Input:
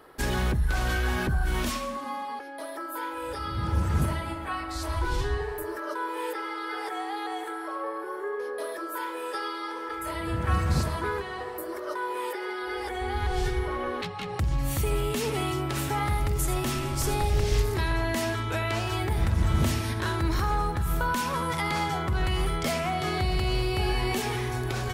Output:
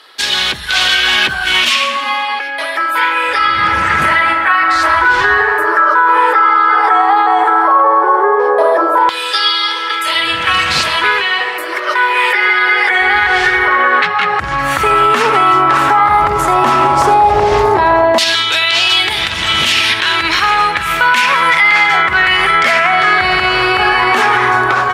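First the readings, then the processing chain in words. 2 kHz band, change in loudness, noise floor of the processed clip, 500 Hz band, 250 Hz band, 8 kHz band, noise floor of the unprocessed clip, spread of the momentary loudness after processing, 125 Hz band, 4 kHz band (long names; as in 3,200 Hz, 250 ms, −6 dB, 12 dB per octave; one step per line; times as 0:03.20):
+24.0 dB, +18.5 dB, −19 dBFS, +15.0 dB, +8.0 dB, +11.0 dB, −36 dBFS, 5 LU, −1.5 dB, +23.0 dB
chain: automatic gain control gain up to 5.5 dB
auto-filter band-pass saw down 0.11 Hz 770–3,900 Hz
boost into a limiter +27.5 dB
level −1 dB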